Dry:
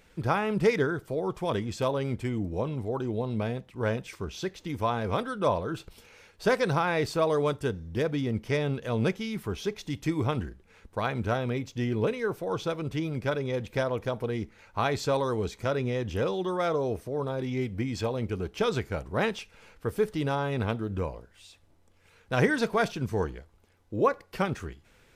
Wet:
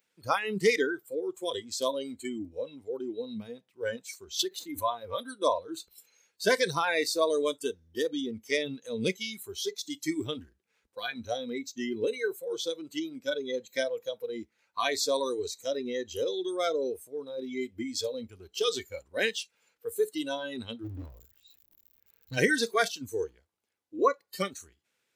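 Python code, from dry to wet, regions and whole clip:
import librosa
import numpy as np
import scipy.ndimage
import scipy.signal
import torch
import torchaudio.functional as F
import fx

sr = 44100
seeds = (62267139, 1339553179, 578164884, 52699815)

y = fx.chain(x, sr, fx.peak_eq(hz=5900.0, db=-8.0, octaves=1.2),
    fx.pre_swell(db_per_s=92.0), at=(4.39, 5.29))
y = fx.riaa(y, sr, side='playback', at=(20.83, 22.36), fade=0.02)
y = fx.dmg_crackle(y, sr, seeds[0], per_s=81.0, level_db=-41.0, at=(20.83, 22.36), fade=0.02)
y = fx.clip_hard(y, sr, threshold_db=-23.5, at=(20.83, 22.36), fade=0.02)
y = fx.noise_reduce_blind(y, sr, reduce_db=20)
y = scipy.signal.sosfilt(scipy.signal.butter(2, 200.0, 'highpass', fs=sr, output='sos'), y)
y = fx.high_shelf(y, sr, hz=2200.0, db=10.5)
y = F.gain(torch.from_numpy(y), -1.0).numpy()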